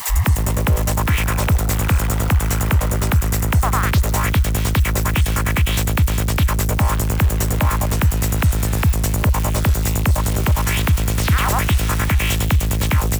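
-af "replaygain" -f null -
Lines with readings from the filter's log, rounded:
track_gain = +3.5 dB
track_peak = 0.290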